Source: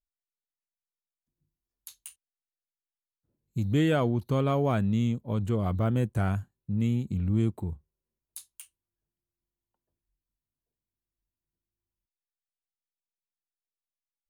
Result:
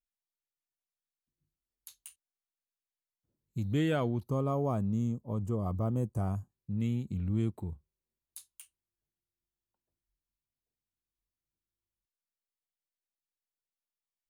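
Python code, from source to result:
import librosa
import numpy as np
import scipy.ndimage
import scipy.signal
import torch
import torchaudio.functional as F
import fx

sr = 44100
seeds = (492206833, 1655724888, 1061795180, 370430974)

y = fx.spec_box(x, sr, start_s=4.25, length_s=2.26, low_hz=1300.0, high_hz=4600.0, gain_db=-13)
y = y * librosa.db_to_amplitude(-5.0)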